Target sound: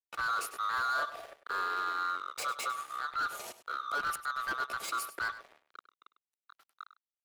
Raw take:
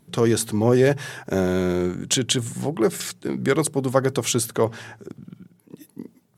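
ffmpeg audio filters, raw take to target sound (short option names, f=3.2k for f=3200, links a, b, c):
-filter_complex "[0:a]afftfilt=real='real(if(lt(b,960),b+48*(1-2*mod(floor(b/48),2)),b),0)':imag='imag(if(lt(b,960),b+48*(1-2*mod(floor(b/48),2)),b),0)':win_size=2048:overlap=0.75,volume=20dB,asoftclip=hard,volume=-20dB,firequalizer=gain_entry='entry(570,0);entry(2500,-12);entry(11000,12)':delay=0.05:min_phase=1,aeval=exprs='sgn(val(0))*max(abs(val(0))-0.015,0)':c=same,acrossover=split=380 4400:gain=0.224 1 0.0891[a][b][c];[a][b][c]amix=inputs=3:normalize=0,atempo=0.88,asplit=2[d][e];[e]aecho=0:1:100:0.2[f];[d][f]amix=inputs=2:normalize=0,volume=-1.5dB"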